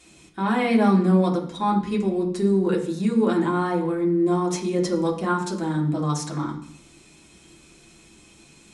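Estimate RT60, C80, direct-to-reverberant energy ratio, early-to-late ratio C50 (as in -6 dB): 0.60 s, 12.5 dB, -2.5 dB, 9.0 dB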